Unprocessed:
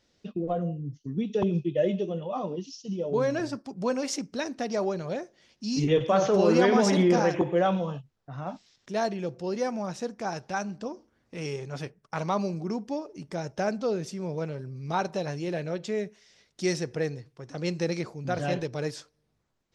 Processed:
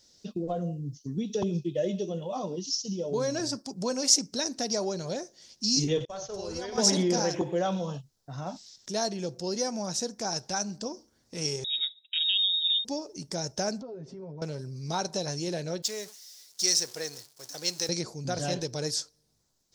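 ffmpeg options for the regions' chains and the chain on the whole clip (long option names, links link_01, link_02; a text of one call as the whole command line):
ffmpeg -i in.wav -filter_complex "[0:a]asettb=1/sr,asplit=3[link_01][link_02][link_03];[link_01]atrim=end=6.054[link_04];[link_02]atrim=start=6.05:end=6.78,asetpts=PTS-STARTPTS,afade=type=in:duration=0.004:curve=qsin,afade=type=out:start_time=0.726:duration=0.004:curve=qsin,agate=range=-33dB:threshold=-16dB:ratio=3:release=100:detection=peak,lowshelf=frequency=130:width_type=q:width=3:gain=14,acompressor=threshold=-35dB:ratio=3:attack=3.2:release=140:knee=1:detection=peak[link_05];[link_03]atrim=start=6.776[link_06];[link_04][link_05]acrossfade=duration=0.004:curve1=hsin:curve2=qsin[link_07];[link_07][link_06]acrossfade=duration=0.004:curve1=qsin:curve2=hsin,asettb=1/sr,asplit=3[link_08][link_09][link_10];[link_08]atrim=end=11.644[link_11];[link_09]atrim=start=11.64:end=12.85,asetpts=PTS-STARTPTS,afade=type=in:duration=0.004:curve=qsin,afade=type=out:start_time=1.206:duration=0.004:curve=qsin,equalizer=frequency=2900:width_type=o:width=0.71:gain=-14.5,lowpass=frequency=3300:width_type=q:width=0.5098,lowpass=frequency=3300:width_type=q:width=0.6013,lowpass=frequency=3300:width_type=q:width=0.9,lowpass=frequency=3300:width_type=q:width=2.563,afreqshift=-3900[link_12];[link_10]atrim=start=12.846[link_13];[link_11][link_12]acrossfade=duration=0.004:curve1=hsin:curve2=qsin[link_14];[link_14][link_13]acrossfade=duration=0.004:curve1=qsin:curve2=hsin,asettb=1/sr,asplit=3[link_15][link_16][link_17];[link_15]atrim=end=13.814[link_18];[link_16]atrim=start=13.81:end=14.42,asetpts=PTS-STARTPTS,afade=type=in:duration=0.004:curve=qsin,afade=type=out:start_time=0.606:duration=0.004:curve=qsin,lowpass=1200,aecho=1:1:7.4:0.83,atrim=end_sample=26901,acompressor=threshold=-39dB:ratio=5:attack=3.2:release=140:knee=1:detection=peak[link_19];[link_17]atrim=start=14.416[link_20];[link_18][link_19]acrossfade=duration=0.004:curve1=hsin:curve2=qsin[link_21];[link_21][link_20]acrossfade=duration=0.004:curve1=qsin:curve2=hsin,asettb=1/sr,asplit=3[link_22][link_23][link_24];[link_22]atrim=end=15.824[link_25];[link_23]atrim=start=15.82:end=17.89,asetpts=PTS-STARTPTS,afade=type=in:duration=0.004:curve=qsin,afade=type=out:start_time=2.066:duration=0.004:curve=qsin,aeval=exprs='val(0)+0.5*0.0075*sgn(val(0))':channel_layout=same,agate=range=-33dB:threshold=-39dB:ratio=3:release=100:detection=peak,highpass=frequency=1100:poles=1[link_26];[link_24]atrim=start=17.886[link_27];[link_25][link_26]acrossfade=duration=0.004:curve1=hsin:curve2=qsin[link_28];[link_28][link_27]acrossfade=duration=0.004:curve1=qsin:curve2=hsin,acompressor=threshold=-31dB:ratio=1.5,highshelf=frequency=3600:width_type=q:width=1.5:gain=12,bandreject=frequency=1200:width=15" out.wav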